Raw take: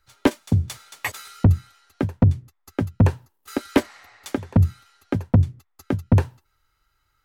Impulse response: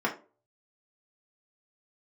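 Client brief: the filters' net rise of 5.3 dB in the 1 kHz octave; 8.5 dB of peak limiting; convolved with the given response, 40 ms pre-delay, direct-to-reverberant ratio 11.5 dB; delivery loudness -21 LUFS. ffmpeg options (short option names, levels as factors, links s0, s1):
-filter_complex "[0:a]equalizer=f=1000:t=o:g=6.5,alimiter=limit=0.224:level=0:latency=1,asplit=2[s0][s1];[1:a]atrim=start_sample=2205,adelay=40[s2];[s1][s2]afir=irnorm=-1:irlink=0,volume=0.0794[s3];[s0][s3]amix=inputs=2:normalize=0,volume=2"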